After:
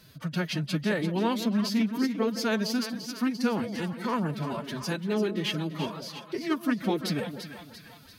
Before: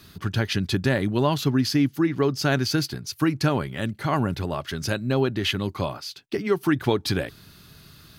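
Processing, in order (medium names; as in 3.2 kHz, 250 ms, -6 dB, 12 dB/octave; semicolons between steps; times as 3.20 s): two-band feedback delay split 690 Hz, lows 168 ms, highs 342 ms, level -9 dB; formant-preserving pitch shift +8 st; trim -5 dB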